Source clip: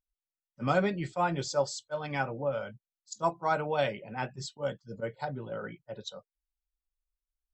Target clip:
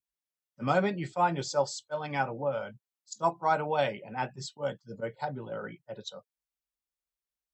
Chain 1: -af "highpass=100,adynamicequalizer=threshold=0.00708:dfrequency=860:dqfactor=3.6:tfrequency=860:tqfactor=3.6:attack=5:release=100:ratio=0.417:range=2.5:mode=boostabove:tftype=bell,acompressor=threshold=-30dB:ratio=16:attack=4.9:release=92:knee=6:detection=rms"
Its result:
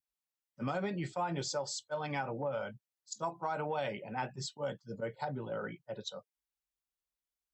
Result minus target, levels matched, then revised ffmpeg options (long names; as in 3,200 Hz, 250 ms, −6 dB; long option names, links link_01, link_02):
downward compressor: peak gain reduction +12.5 dB
-af "highpass=100,adynamicequalizer=threshold=0.00708:dfrequency=860:dqfactor=3.6:tfrequency=860:tqfactor=3.6:attack=5:release=100:ratio=0.417:range=2.5:mode=boostabove:tftype=bell"